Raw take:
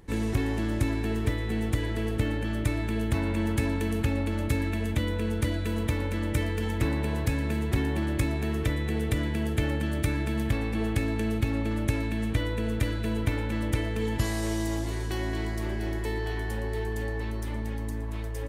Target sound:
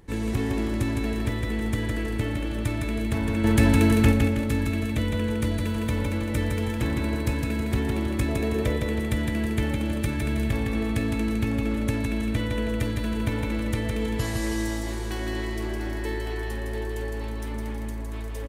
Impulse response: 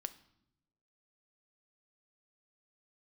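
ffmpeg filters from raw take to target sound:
-filter_complex "[0:a]asettb=1/sr,asplit=3[link_01][link_02][link_03];[link_01]atrim=end=3.444[link_04];[link_02]atrim=start=3.44:end=4.12,asetpts=PTS-STARTPTS,afade=type=in:duration=0.004:curve=qsin,afade=type=out:start_time=0.676:duration=0.004:curve=qsin,acontrast=87[link_05];[link_03]atrim=start=4.116[link_06];[link_04][link_05]acrossfade=duration=0.004:curve1=hsin:curve2=qsin[link_07];[link_07][link_06]acrossfade=duration=0.004:curve1=qsin:curve2=hsin,asettb=1/sr,asplit=3[link_08][link_09][link_10];[link_08]atrim=end=8.284[link_11];[link_09]atrim=start=8.28:end=8.77,asetpts=PTS-STARTPTS,afade=type=in:duration=0.004:curve=qsin,afade=type=out:start_time=0.486:duration=0.004:curve=qsin,equalizer=frequency=510:width=2.1:gain=11[link_12];[link_10]atrim=start=8.766[link_13];[link_11][link_12]acrossfade=duration=0.004:curve1=hsin:curve2=qsin[link_14];[link_14][link_13]acrossfade=duration=0.004:curve1=qsin:curve2=hsin,aecho=1:1:160|320|480|640|800:0.631|0.271|0.117|0.0502|0.0216"

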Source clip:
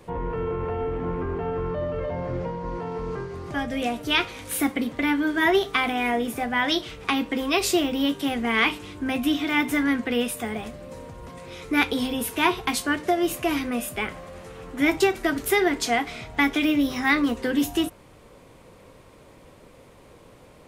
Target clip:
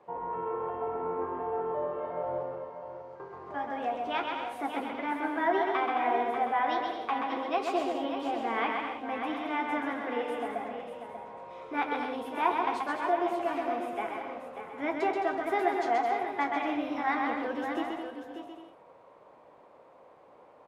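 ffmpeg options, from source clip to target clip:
ffmpeg -i in.wav -filter_complex "[0:a]bandpass=frequency=800:width_type=q:width=1.8:csg=0,asettb=1/sr,asplit=3[link_01][link_02][link_03];[link_01]atrim=end=2.434[link_04];[link_02]atrim=start=2.43:end=3.2,asetpts=PTS-STARTPTS,afade=type=in:duration=0.004:curve=qsin,afade=type=out:start_time=0.766:duration=0.004:curve=qsin,aderivative[link_05];[link_03]atrim=start=3.196[link_06];[link_04][link_05]acrossfade=duration=0.004:curve1=hsin:curve2=qsin[link_07];[link_07][link_06]acrossfade=duration=0.004:curve1=qsin:curve2=hsin,asplit=2[link_08][link_09];[link_09]aecho=0:1:589:0.376[link_10];[link_08][link_10]amix=inputs=2:normalize=0,flanger=delay=4.8:depth=7.3:regen=-72:speed=1.3:shape=sinusoidal,asplit=2[link_11][link_12];[link_12]aecho=0:1:130|214.5|269.4|305.1|328.3:0.631|0.398|0.251|0.158|0.1[link_13];[link_11][link_13]amix=inputs=2:normalize=0,volume=3dB" out.wav

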